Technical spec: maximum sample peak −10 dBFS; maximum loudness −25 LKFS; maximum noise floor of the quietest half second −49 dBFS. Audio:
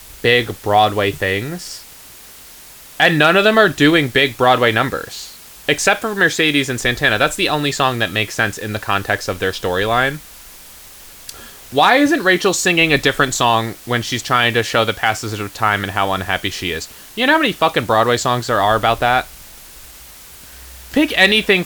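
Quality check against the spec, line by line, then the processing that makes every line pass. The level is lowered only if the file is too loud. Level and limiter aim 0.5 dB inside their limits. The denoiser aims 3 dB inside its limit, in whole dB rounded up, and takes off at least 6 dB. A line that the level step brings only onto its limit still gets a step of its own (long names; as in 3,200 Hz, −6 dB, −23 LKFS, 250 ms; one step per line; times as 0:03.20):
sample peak −1.0 dBFS: out of spec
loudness −15.5 LKFS: out of spec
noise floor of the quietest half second −40 dBFS: out of spec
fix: level −10 dB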